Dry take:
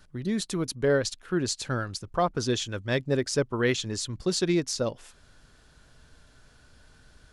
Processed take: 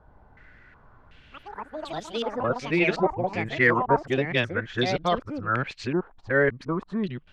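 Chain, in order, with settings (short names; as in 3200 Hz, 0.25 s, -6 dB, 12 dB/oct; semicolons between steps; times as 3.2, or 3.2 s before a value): whole clip reversed; echoes that change speed 0.106 s, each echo +5 st, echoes 3, each echo -6 dB; stepped low-pass 2.7 Hz 880–3500 Hz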